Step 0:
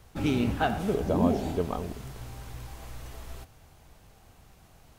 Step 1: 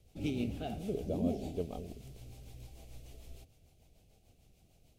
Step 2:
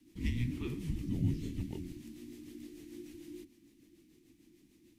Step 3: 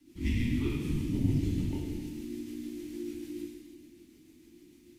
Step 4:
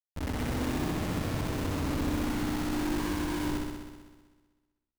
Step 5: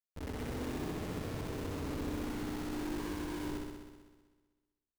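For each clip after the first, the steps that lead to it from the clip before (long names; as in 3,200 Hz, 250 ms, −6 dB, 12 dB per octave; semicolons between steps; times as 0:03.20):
rotating-speaker cabinet horn 6.7 Hz; flat-topped bell 1,300 Hz −13.5 dB 1.3 octaves; level −7.5 dB
frequency shifter −360 Hz; level +1 dB
reverb whose tail is shaped and stops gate 500 ms falling, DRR −5 dB
comparator with hysteresis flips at −40.5 dBFS; on a send: flutter between parallel walls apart 10.9 metres, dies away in 1.4 s
parametric band 430 Hz +7 dB 0.42 octaves; level −8.5 dB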